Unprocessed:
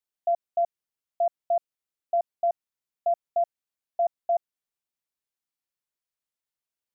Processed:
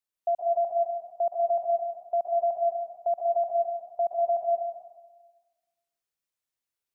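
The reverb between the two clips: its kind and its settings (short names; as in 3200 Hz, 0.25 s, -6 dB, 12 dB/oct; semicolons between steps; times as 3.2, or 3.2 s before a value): plate-style reverb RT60 1.3 s, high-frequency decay 1×, pre-delay 0.11 s, DRR -1 dB; gain -2 dB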